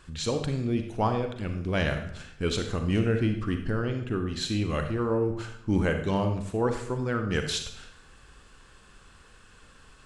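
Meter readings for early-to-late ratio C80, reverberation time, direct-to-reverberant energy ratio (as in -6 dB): 10.0 dB, 0.65 s, 5.5 dB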